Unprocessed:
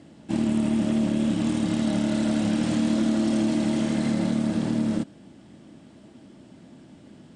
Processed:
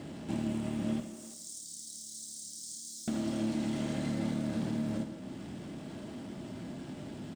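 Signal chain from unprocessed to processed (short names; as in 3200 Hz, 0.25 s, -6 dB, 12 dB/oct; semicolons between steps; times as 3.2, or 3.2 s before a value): G.711 law mismatch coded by mu; 1–3.08 inverse Chebyshev high-pass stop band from 2800 Hz, stop band 40 dB; compressor 2:1, threshold -40 dBFS, peak gain reduction 11.5 dB; speakerphone echo 0.34 s, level -14 dB; non-linear reverb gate 0.37 s falling, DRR 5 dB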